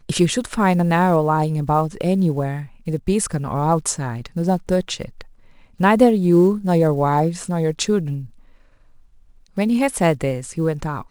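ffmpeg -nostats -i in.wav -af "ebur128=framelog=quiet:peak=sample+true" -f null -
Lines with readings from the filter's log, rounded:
Integrated loudness:
  I:         -19.4 LUFS
  Threshold: -30.1 LUFS
Loudness range:
  LRA:         4.7 LU
  Threshold: -40.1 LUFS
  LRA low:   -22.9 LUFS
  LRA high:  -18.1 LUFS
Sample peak:
  Peak:       -1.6 dBFS
True peak:
  Peak:       -1.6 dBFS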